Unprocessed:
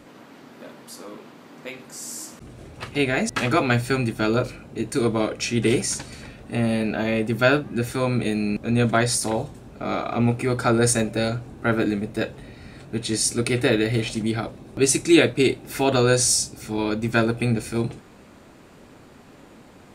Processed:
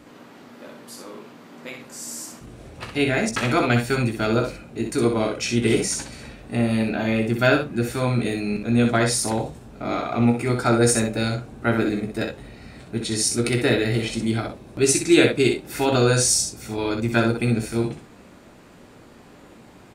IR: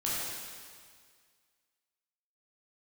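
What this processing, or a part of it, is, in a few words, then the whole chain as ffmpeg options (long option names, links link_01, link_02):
slapback doubling: -filter_complex "[0:a]asplit=3[link_01][link_02][link_03];[link_02]adelay=17,volume=-8dB[link_04];[link_03]adelay=63,volume=-5.5dB[link_05];[link_01][link_04][link_05]amix=inputs=3:normalize=0,volume=-1dB"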